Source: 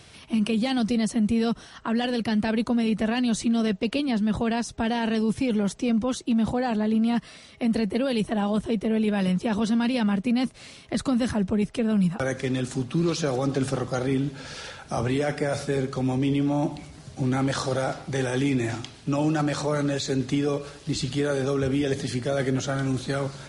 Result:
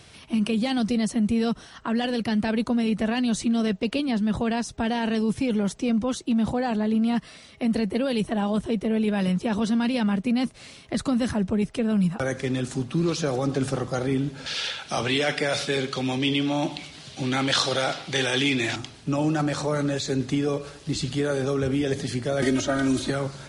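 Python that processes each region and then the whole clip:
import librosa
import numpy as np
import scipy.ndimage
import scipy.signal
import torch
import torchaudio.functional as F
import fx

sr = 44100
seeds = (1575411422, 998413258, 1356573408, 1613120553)

y = fx.chain(x, sr, fx.highpass(hz=180.0, slope=6),
    fx.peak_eq(hz=3300.0, db=14.0, octaves=1.6), at=(14.46, 18.76))
y = fx.chain(y, sr, fx.comb(ms=3.2, depth=0.93),
    fx.band_squash(depth_pct=100), at=(22.42, 23.1))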